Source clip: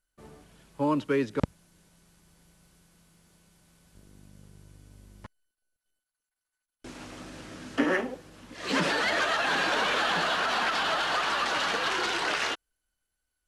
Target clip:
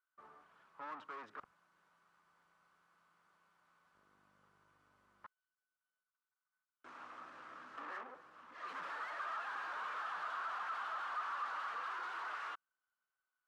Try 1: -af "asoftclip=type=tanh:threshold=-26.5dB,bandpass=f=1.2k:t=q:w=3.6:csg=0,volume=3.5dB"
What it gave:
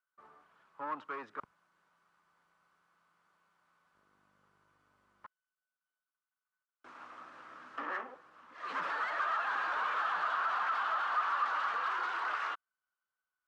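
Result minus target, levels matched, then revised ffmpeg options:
soft clip: distortion -7 dB
-af "asoftclip=type=tanh:threshold=-38dB,bandpass=f=1.2k:t=q:w=3.6:csg=0,volume=3.5dB"

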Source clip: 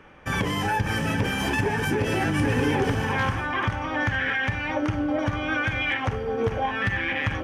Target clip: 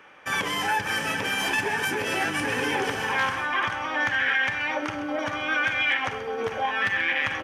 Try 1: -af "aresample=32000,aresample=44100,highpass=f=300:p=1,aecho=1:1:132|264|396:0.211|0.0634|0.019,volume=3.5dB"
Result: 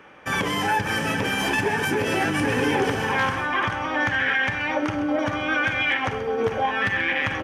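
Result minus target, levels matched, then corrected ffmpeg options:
250 Hz band +5.5 dB
-af "aresample=32000,aresample=44100,highpass=f=960:p=1,aecho=1:1:132|264|396:0.211|0.0634|0.019,volume=3.5dB"

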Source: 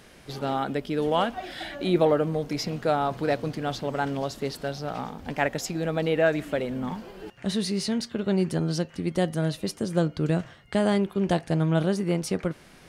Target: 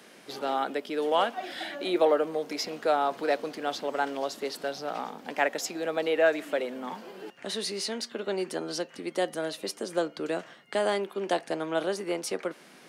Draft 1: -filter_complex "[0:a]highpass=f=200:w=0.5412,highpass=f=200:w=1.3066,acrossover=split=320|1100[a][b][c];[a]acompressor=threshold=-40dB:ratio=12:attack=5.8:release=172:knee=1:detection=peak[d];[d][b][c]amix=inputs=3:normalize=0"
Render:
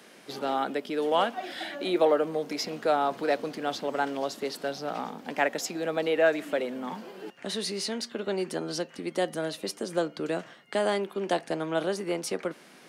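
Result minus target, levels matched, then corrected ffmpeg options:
compressor: peak gain reduction -8 dB
-filter_complex "[0:a]highpass=f=200:w=0.5412,highpass=f=200:w=1.3066,acrossover=split=320|1100[a][b][c];[a]acompressor=threshold=-48.5dB:ratio=12:attack=5.8:release=172:knee=1:detection=peak[d];[d][b][c]amix=inputs=3:normalize=0"

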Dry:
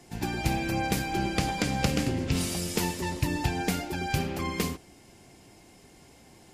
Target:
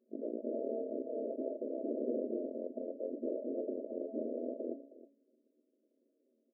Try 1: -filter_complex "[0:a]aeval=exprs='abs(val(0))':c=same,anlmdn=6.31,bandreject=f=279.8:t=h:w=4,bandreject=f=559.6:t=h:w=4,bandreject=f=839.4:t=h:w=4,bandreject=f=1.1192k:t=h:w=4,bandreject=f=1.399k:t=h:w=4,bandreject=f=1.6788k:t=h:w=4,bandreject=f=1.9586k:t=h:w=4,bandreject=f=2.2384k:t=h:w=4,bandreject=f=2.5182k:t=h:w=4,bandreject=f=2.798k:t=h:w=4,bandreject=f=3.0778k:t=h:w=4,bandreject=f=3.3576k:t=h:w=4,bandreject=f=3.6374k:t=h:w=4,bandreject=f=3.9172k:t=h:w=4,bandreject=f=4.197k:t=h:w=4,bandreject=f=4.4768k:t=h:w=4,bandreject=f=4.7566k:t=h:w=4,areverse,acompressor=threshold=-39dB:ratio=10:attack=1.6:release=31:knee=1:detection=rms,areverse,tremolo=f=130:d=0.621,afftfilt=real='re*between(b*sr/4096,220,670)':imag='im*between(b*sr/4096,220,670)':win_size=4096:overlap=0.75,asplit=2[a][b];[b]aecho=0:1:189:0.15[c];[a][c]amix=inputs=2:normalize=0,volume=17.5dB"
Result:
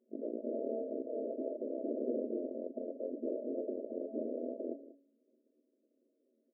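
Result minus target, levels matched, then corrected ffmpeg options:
echo 0.128 s early
-filter_complex "[0:a]aeval=exprs='abs(val(0))':c=same,anlmdn=6.31,bandreject=f=279.8:t=h:w=4,bandreject=f=559.6:t=h:w=4,bandreject=f=839.4:t=h:w=4,bandreject=f=1.1192k:t=h:w=4,bandreject=f=1.399k:t=h:w=4,bandreject=f=1.6788k:t=h:w=4,bandreject=f=1.9586k:t=h:w=4,bandreject=f=2.2384k:t=h:w=4,bandreject=f=2.5182k:t=h:w=4,bandreject=f=2.798k:t=h:w=4,bandreject=f=3.0778k:t=h:w=4,bandreject=f=3.3576k:t=h:w=4,bandreject=f=3.6374k:t=h:w=4,bandreject=f=3.9172k:t=h:w=4,bandreject=f=4.197k:t=h:w=4,bandreject=f=4.4768k:t=h:w=4,bandreject=f=4.7566k:t=h:w=4,areverse,acompressor=threshold=-39dB:ratio=10:attack=1.6:release=31:knee=1:detection=rms,areverse,tremolo=f=130:d=0.621,afftfilt=real='re*between(b*sr/4096,220,670)':imag='im*between(b*sr/4096,220,670)':win_size=4096:overlap=0.75,asplit=2[a][b];[b]aecho=0:1:317:0.15[c];[a][c]amix=inputs=2:normalize=0,volume=17.5dB"

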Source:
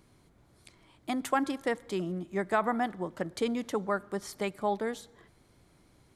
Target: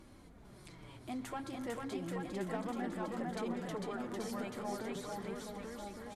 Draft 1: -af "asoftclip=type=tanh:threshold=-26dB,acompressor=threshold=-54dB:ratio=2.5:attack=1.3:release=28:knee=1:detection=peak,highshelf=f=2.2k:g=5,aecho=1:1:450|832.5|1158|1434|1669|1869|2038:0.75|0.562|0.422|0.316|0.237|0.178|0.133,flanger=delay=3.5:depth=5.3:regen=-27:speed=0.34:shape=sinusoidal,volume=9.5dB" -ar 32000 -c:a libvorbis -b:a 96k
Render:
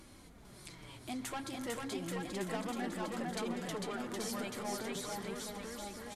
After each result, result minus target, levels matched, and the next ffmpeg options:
4000 Hz band +6.0 dB; soft clip: distortion +8 dB
-af "asoftclip=type=tanh:threshold=-26dB,acompressor=threshold=-54dB:ratio=2.5:attack=1.3:release=28:knee=1:detection=peak,highshelf=f=2.2k:g=-4,aecho=1:1:450|832.5|1158|1434|1669|1869|2038:0.75|0.562|0.422|0.316|0.237|0.178|0.133,flanger=delay=3.5:depth=5.3:regen=-27:speed=0.34:shape=sinusoidal,volume=9.5dB" -ar 32000 -c:a libvorbis -b:a 96k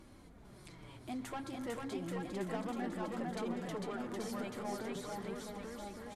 soft clip: distortion +8 dB
-af "asoftclip=type=tanh:threshold=-19dB,acompressor=threshold=-54dB:ratio=2.5:attack=1.3:release=28:knee=1:detection=peak,highshelf=f=2.2k:g=-4,aecho=1:1:450|832.5|1158|1434|1669|1869|2038:0.75|0.562|0.422|0.316|0.237|0.178|0.133,flanger=delay=3.5:depth=5.3:regen=-27:speed=0.34:shape=sinusoidal,volume=9.5dB" -ar 32000 -c:a libvorbis -b:a 96k

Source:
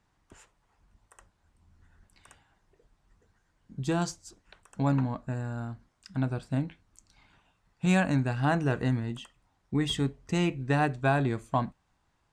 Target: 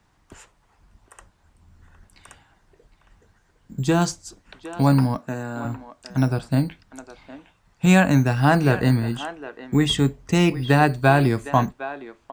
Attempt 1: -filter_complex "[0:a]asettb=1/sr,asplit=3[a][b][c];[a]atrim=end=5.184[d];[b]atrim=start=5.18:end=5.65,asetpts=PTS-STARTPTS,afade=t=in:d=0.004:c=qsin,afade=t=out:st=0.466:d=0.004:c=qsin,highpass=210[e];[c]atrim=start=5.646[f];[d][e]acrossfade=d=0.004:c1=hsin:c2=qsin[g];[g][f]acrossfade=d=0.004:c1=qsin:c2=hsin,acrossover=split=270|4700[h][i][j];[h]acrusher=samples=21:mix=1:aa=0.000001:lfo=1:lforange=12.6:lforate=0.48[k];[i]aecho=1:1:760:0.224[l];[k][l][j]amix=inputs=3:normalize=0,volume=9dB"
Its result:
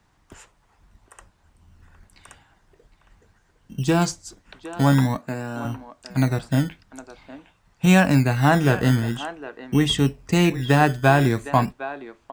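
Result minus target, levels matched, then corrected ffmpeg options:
decimation with a swept rate: distortion +9 dB
-filter_complex "[0:a]asettb=1/sr,asplit=3[a][b][c];[a]atrim=end=5.184[d];[b]atrim=start=5.18:end=5.65,asetpts=PTS-STARTPTS,afade=t=in:d=0.004:c=qsin,afade=t=out:st=0.466:d=0.004:c=qsin,highpass=210[e];[c]atrim=start=5.646[f];[d][e]acrossfade=d=0.004:c1=hsin:c2=qsin[g];[g][f]acrossfade=d=0.004:c1=qsin:c2=hsin,acrossover=split=270|4700[h][i][j];[h]acrusher=samples=8:mix=1:aa=0.000001:lfo=1:lforange=4.8:lforate=0.48[k];[i]aecho=1:1:760:0.224[l];[k][l][j]amix=inputs=3:normalize=0,volume=9dB"

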